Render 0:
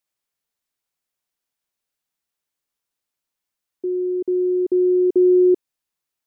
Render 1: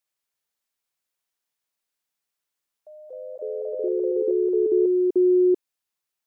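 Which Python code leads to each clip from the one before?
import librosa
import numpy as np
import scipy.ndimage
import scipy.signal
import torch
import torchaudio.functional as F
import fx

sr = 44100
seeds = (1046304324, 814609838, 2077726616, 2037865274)

y = fx.low_shelf(x, sr, hz=380.0, db=-5.5)
y = fx.echo_pitch(y, sr, ms=195, semitones=3, count=3, db_per_echo=-6.0)
y = y * librosa.db_to_amplitude(-1.0)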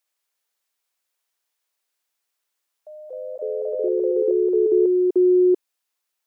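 y = scipy.signal.sosfilt(scipy.signal.butter(2, 360.0, 'highpass', fs=sr, output='sos'), x)
y = y * librosa.db_to_amplitude(5.0)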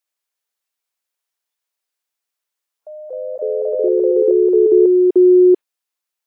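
y = fx.noise_reduce_blind(x, sr, reduce_db=10)
y = y * librosa.db_to_amplitude(6.5)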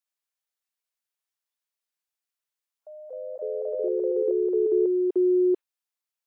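y = fx.highpass(x, sr, hz=460.0, slope=6)
y = y * librosa.db_to_amplitude(-7.5)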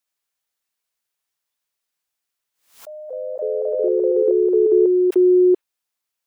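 y = fx.pre_swell(x, sr, db_per_s=130.0)
y = y * librosa.db_to_amplitude(7.5)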